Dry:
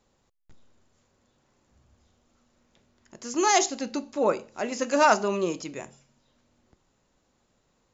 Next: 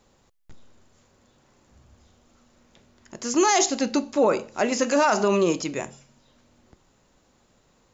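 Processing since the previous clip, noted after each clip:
brickwall limiter −18.5 dBFS, peak gain reduction 11 dB
level +7.5 dB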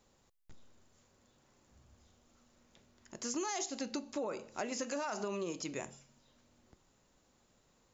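high-shelf EQ 5,000 Hz +4.5 dB
downward compressor 6 to 1, threshold −26 dBFS, peak gain reduction 10.5 dB
level −9 dB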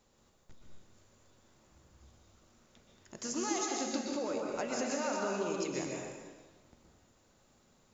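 dense smooth reverb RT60 1.4 s, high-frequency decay 0.8×, pre-delay 110 ms, DRR −1 dB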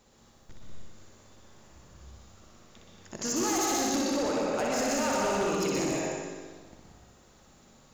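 flutter between parallel walls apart 10.5 metres, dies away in 0.95 s
gain into a clipping stage and back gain 31.5 dB
level +7 dB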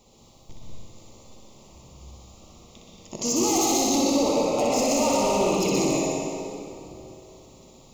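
Butterworth band-reject 1,600 Hz, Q 1.4
dense smooth reverb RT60 3.3 s, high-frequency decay 0.7×, DRR 5.5 dB
level +5.5 dB

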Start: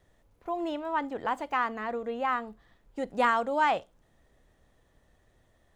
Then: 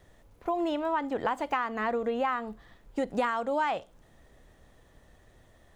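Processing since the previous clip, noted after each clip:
downward compressor 10 to 1, threshold −32 dBFS, peak gain reduction 12.5 dB
level +7 dB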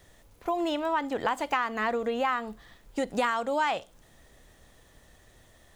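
high-shelf EQ 2,400 Hz +9.5 dB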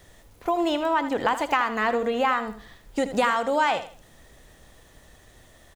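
repeating echo 80 ms, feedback 28%, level −12 dB
level +4.5 dB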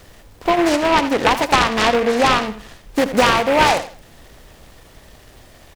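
short delay modulated by noise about 1,300 Hz, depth 0.093 ms
level +8 dB

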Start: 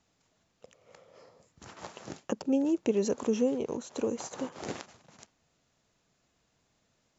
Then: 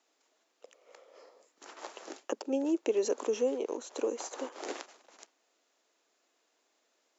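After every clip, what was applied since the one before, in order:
Butterworth high-pass 300 Hz 36 dB per octave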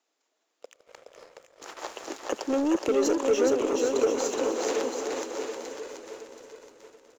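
feedback delay that plays each chunk backwards 363 ms, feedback 68%, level −11.5 dB
leveller curve on the samples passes 2
bouncing-ball delay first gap 420 ms, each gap 0.75×, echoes 5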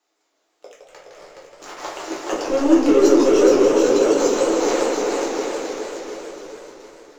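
rectangular room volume 50 cubic metres, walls mixed, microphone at 0.96 metres
feedback echo with a swinging delay time 157 ms, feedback 66%, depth 191 cents, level −5.5 dB
level +1.5 dB

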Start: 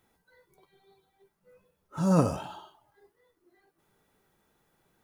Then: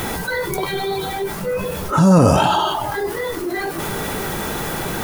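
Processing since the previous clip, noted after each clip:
boost into a limiter +13.5 dB
envelope flattener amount 70%
level −2.5 dB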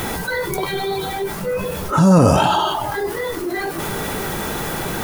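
no processing that can be heard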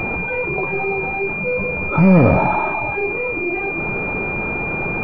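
gain on one half-wave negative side −3 dB
switching amplifier with a slow clock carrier 2,400 Hz
level +2 dB

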